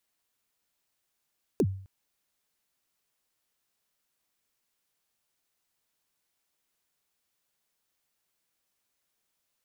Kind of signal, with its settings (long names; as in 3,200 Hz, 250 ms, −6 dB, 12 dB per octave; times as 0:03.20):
synth kick length 0.26 s, from 480 Hz, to 96 Hz, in 57 ms, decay 0.52 s, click on, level −18 dB